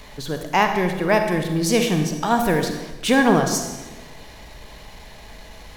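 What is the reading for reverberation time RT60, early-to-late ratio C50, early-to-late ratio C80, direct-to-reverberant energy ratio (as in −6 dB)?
1.2 s, 6.0 dB, 8.0 dB, 5.0 dB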